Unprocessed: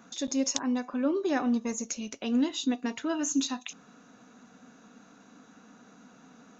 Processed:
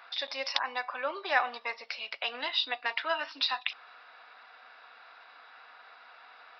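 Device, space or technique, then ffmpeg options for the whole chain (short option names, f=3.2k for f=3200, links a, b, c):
musical greeting card: -af "aresample=11025,aresample=44100,highpass=f=710:w=0.5412,highpass=f=710:w=1.3066,equalizer=f=2.1k:t=o:w=0.59:g=5.5,volume=6.5dB"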